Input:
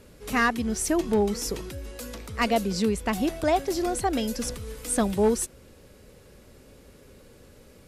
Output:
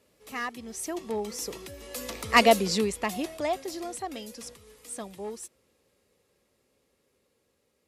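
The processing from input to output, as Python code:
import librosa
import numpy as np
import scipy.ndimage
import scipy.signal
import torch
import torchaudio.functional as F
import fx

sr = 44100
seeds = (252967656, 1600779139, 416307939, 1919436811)

y = fx.doppler_pass(x, sr, speed_mps=8, closest_m=2.3, pass_at_s=2.37)
y = scipy.signal.sosfilt(scipy.signal.butter(2, 55.0, 'highpass', fs=sr, output='sos'), y)
y = fx.low_shelf(y, sr, hz=260.0, db=-11.5)
y = fx.notch(y, sr, hz=1500.0, q=7.5)
y = y * 10.0 ** (8.0 / 20.0)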